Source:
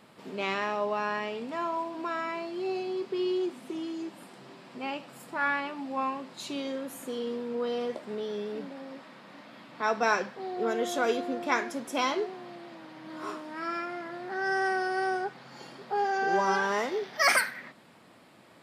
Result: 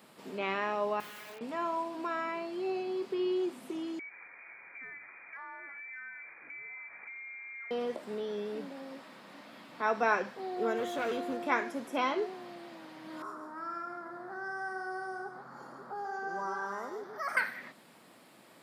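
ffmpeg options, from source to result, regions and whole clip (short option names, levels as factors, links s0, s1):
-filter_complex "[0:a]asettb=1/sr,asplit=3[s0][s1][s2];[s0]atrim=end=1.004[s3];[s1]atrim=start=1:end=1.41,asetpts=PTS-STARTPTS,afade=t=in:d=0.004:c=qsin,afade=t=out:st=0.406:d=0.004:c=qsin,highpass=730,lowpass=3000,aeval=exprs='(mod(70.8*val(0)+1,2)-1)/70.8':c=same[s4];[s2]atrim=start=1.406[s5];[s3][s4]acrossfade=d=0.004:c1=hsin:c2=qsin[s6];[s6][s5]acrossfade=d=0.004:c1=qsin:c2=hsin,asettb=1/sr,asplit=3[s7][s8][s9];[s7]atrim=end=3.994[s10];[s8]atrim=start=3.99:end=7.71,asetpts=PTS-STARTPTS,afade=t=in:d=0.004:c=qsin,afade=t=out:st=3.716:d=0.004:c=qsin,lowpass=f=2200:t=q:w=0.5098,lowpass=f=2200:t=q:w=0.6013,lowpass=f=2200:t=q:w=0.9,lowpass=f=2200:t=q:w=2.563,afreqshift=-2600,acompressor=threshold=0.00891:ratio=5:attack=3.2:release=140:knee=1:detection=peak[s11];[s9]atrim=start=7.706[s12];[s10][s11]acrossfade=d=0.004:c1=hsin:c2=qsin[s13];[s13][s12]acrossfade=d=0.004:c1=qsin:c2=hsin,asettb=1/sr,asplit=3[s14][s15][s16];[s14]atrim=end=10.774[s17];[s15]atrim=start=10.77:end=11.37,asetpts=PTS-STARTPTS,afade=t=in:d=0.004:c=qsin,afade=t=out:st=0.596:d=0.004:c=qsin,highshelf=f=4600:g=6,bandreject=f=5300:w=24,volume=25.1,asoftclip=hard,volume=0.0398[s18];[s16]atrim=start=11.366[s19];[s17][s18]acrossfade=d=0.004:c1=hsin:c2=qsin[s20];[s20][s19]acrossfade=d=0.004:c1=qsin:c2=hsin,asettb=1/sr,asplit=3[s21][s22][s23];[s21]atrim=end=13.224[s24];[s22]atrim=start=13.22:end=17.37,asetpts=PTS-STARTPTS,afade=t=in:d=0.004:c=qsin,afade=t=out:st=4.146:d=0.004:c=qsin,highshelf=f=1900:t=q:w=3:g=-12.5,acrossover=split=130|3000[s25][s26][s27];[s26]acompressor=threshold=0.00631:ratio=2:attack=3.2:release=140:knee=2.83:detection=peak[s28];[s25][s28][s27]amix=inputs=3:normalize=0,aecho=1:1:142:0.422,atrim=end_sample=183015[s29];[s23]atrim=start=17.366[s30];[s24][s29]acrossfade=d=0.004:c1=hsin:c2=qsin[s31];[s31][s30]acrossfade=d=0.004:c1=qsin:c2=hsin,highpass=150,acrossover=split=3100[s32][s33];[s33]acompressor=threshold=0.00126:ratio=4:attack=1:release=60[s34];[s32][s34]amix=inputs=2:normalize=0,highshelf=f=8700:g=12,volume=0.794"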